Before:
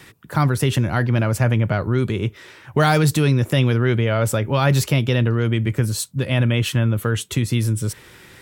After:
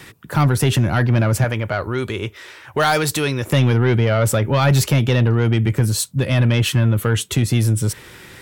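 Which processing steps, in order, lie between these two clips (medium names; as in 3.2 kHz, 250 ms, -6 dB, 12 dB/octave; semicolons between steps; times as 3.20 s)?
1.44–3.47 s: peaking EQ 160 Hz -12.5 dB 1.9 oct; saturation -12.5 dBFS, distortion -16 dB; trim +4.5 dB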